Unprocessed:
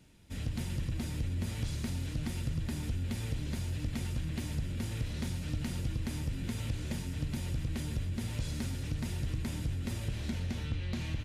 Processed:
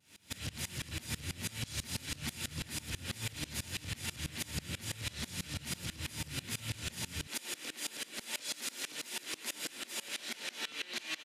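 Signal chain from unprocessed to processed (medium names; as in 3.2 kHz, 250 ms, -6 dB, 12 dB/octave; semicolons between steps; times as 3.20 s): tilt shelf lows -8 dB, about 870 Hz; doubling 28 ms -13.5 dB; echo whose repeats swap between lows and highs 108 ms, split 1.2 kHz, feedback 84%, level -10.5 dB; vibrato 0.36 Hz 12 cents; high-pass 76 Hz 24 dB/octave, from 7.27 s 290 Hz; peak limiter -33 dBFS, peak gain reduction 11 dB; sawtooth tremolo in dB swelling 6.1 Hz, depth 24 dB; trim +9.5 dB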